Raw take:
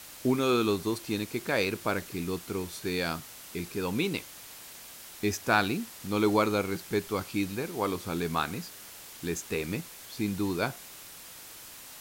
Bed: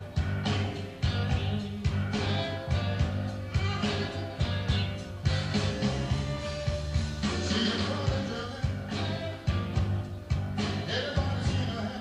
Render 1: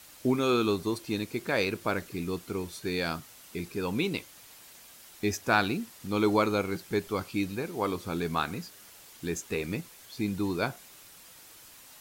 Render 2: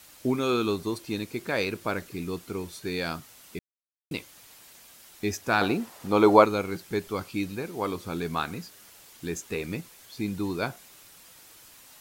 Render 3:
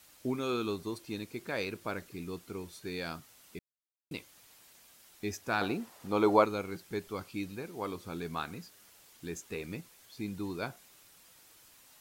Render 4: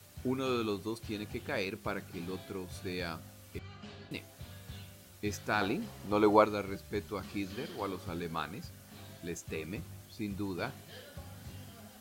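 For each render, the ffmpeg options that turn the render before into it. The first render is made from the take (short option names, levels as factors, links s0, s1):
-af "afftdn=nr=6:nf=-47"
-filter_complex "[0:a]asettb=1/sr,asplit=3[s0][s1][s2];[s0]atrim=end=5.614[s3];[s1]atrim=start=5.61:end=6.45,asetpts=PTS-STARTPTS,afade=t=in:d=0.004:c=qsin,afade=t=out:st=0.836:d=0.004:c=qsin,equalizer=f=720:w=0.63:g=12[s4];[s2]atrim=start=6.446[s5];[s3][s4]acrossfade=d=0.004:c1=hsin:c2=qsin[s6];[s6][s5]acrossfade=d=0.004:c1=qsin:c2=hsin,asplit=3[s7][s8][s9];[s7]atrim=end=3.59,asetpts=PTS-STARTPTS,afade=t=out:st=3.586:d=0.004:c=hsin[s10];[s8]atrim=start=3.59:end=4.11,asetpts=PTS-STARTPTS,volume=0[s11];[s9]atrim=start=4.11,asetpts=PTS-STARTPTS,afade=t=in:d=0.004:c=hsin[s12];[s10][s11][s12]concat=n=3:v=0:a=1"
-af "volume=0.422"
-filter_complex "[1:a]volume=0.106[s0];[0:a][s0]amix=inputs=2:normalize=0"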